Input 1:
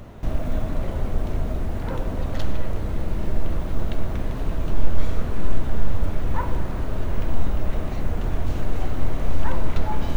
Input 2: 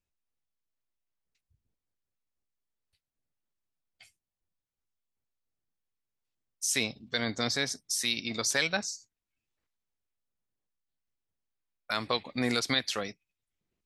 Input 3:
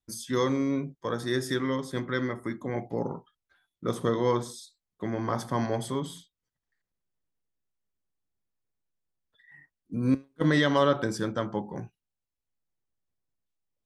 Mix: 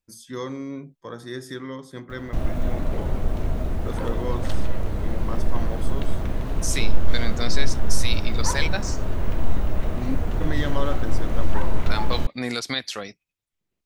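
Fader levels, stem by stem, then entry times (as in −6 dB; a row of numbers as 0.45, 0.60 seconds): 0.0, +1.0, −5.5 decibels; 2.10, 0.00, 0.00 seconds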